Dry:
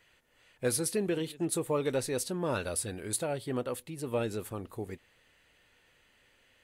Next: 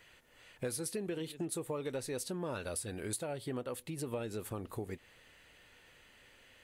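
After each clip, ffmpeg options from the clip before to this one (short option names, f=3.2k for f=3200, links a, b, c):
-af "acompressor=threshold=-42dB:ratio=4,volume=4.5dB"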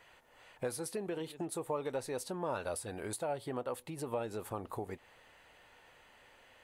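-af "equalizer=f=840:t=o:w=1.4:g=11.5,volume=-3.5dB"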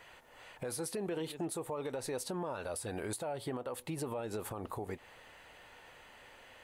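-af "alimiter=level_in=10.5dB:limit=-24dB:level=0:latency=1:release=79,volume=-10.5dB,volume=5dB"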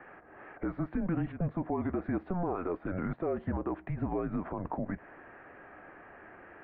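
-af "highpass=f=200:t=q:w=0.5412,highpass=f=200:t=q:w=1.307,lowpass=f=2.1k:t=q:w=0.5176,lowpass=f=2.1k:t=q:w=0.7071,lowpass=f=2.1k:t=q:w=1.932,afreqshift=-180,volume=6.5dB"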